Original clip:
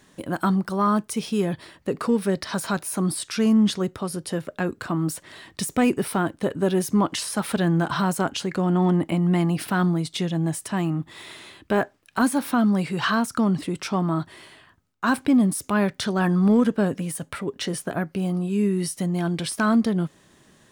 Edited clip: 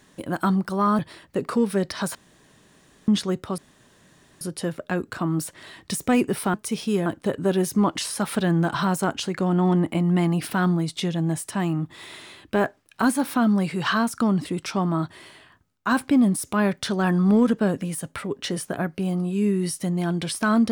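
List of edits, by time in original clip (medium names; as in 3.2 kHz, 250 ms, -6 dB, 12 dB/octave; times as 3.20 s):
0.99–1.51 s: move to 6.23 s
2.67–3.60 s: room tone
4.10 s: insert room tone 0.83 s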